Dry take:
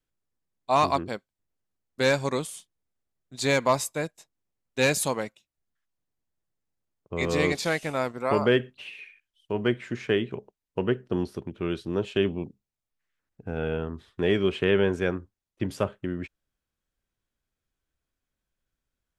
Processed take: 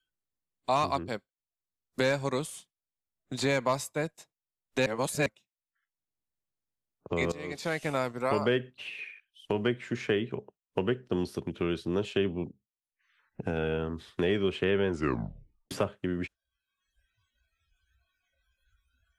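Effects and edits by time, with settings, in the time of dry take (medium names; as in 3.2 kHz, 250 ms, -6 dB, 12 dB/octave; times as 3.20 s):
4.86–5.26 s: reverse
7.32–7.93 s: fade in quadratic, from -18.5 dB
14.88 s: tape stop 0.83 s
whole clip: spectral noise reduction 26 dB; three bands compressed up and down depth 70%; trim -3 dB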